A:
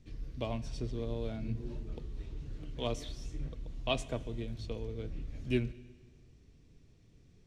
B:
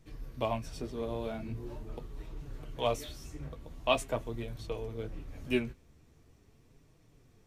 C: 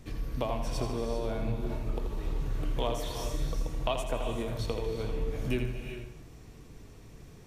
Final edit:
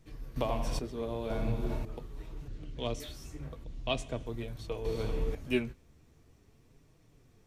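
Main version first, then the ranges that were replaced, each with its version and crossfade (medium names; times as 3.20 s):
B
0.36–0.79 s: from C
1.30–1.85 s: from C
2.48–3.00 s: from A
3.64–4.26 s: from A
4.85–5.35 s: from C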